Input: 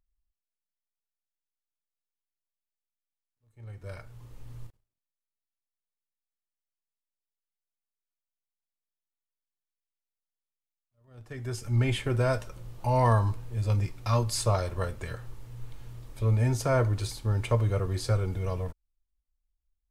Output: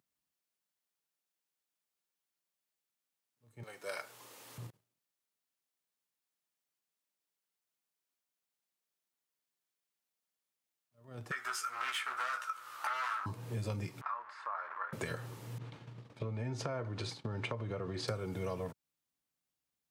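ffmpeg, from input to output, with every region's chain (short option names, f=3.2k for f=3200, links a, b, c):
-filter_complex "[0:a]asettb=1/sr,asplit=3[a][b][c];[a]atrim=end=3.634[d];[b]atrim=start=3.63:end=4.58,asetpts=PTS-STARTPTS,afade=t=in:d=0.004:c=qsin,afade=t=out:st=0.946:d=0.004:c=qsin,highpass=500,highshelf=f=2.9k:g=6.5[e];[c]atrim=start=4.576[f];[d][e]acrossfade=d=0.004:c1=hsin:c2=qsin[g];[g][f]acrossfade=d=0.004:c1=qsin:c2=hsin,asettb=1/sr,asplit=3[h][i][j];[h]atrim=end=11.314[k];[i]atrim=start=11.31:end=13.26,asetpts=PTS-STARTPTS,afade=t=in:d=0.004:c=qsin,afade=t=out:st=1.946:d=0.004:c=qsin,volume=31dB,asoftclip=hard,volume=-31dB,highpass=f=1.3k:t=q:w=8.5,asplit=2[l][m];[m]adelay=16,volume=-5dB[n];[l][n]amix=inputs=2:normalize=0,atrim=end_sample=85995[o];[j]atrim=start=13.256[p];[k][o]acrossfade=d=0.004:c1=hsin:c2=qsin[q];[q][p]acrossfade=d=0.004:c1=qsin:c2=hsin,asettb=1/sr,asplit=3[r][s][t];[r]atrim=end=14.014[u];[s]atrim=start=14.01:end=14.93,asetpts=PTS-STARTPTS,afade=t=in:d=0.004:c=qsin,afade=t=out:st=0.916:d=0.004:c=qsin,aeval=exprs='val(0)+0.5*0.0188*sgn(val(0))':c=same,acompressor=threshold=-33dB:ratio=2:attack=3.2:release=140:knee=1:detection=peak,asuperpass=centerf=1300:order=4:qfactor=1.8[v];[t]atrim=start=14.926[w];[u][v]acrossfade=d=0.004:c1=hsin:c2=qsin[x];[x][w]acrossfade=d=0.004:c1=qsin:c2=hsin,asettb=1/sr,asplit=3[y][z][aa];[y]atrim=end=15.584[ab];[z]atrim=start=15.58:end=18.08,asetpts=PTS-STARTPTS,afade=t=in:d=0.004:c=qsin,afade=t=out:st=2.496:d=0.004:c=qsin,lowpass=4.1k,agate=range=-33dB:threshold=-36dB:ratio=3:release=100:detection=peak,acompressor=threshold=-32dB:ratio=6:attack=3.2:release=140:knee=1:detection=peak[ac];[aa]atrim=start=18.076[ad];[ab][ac]acrossfade=d=0.004:c1=hsin:c2=qsin[ae];[ae][ad]acrossfade=d=0.004:c1=qsin:c2=hsin,highpass=f=130:w=0.5412,highpass=f=130:w=1.3066,acompressor=threshold=-41dB:ratio=6,volume=6dB"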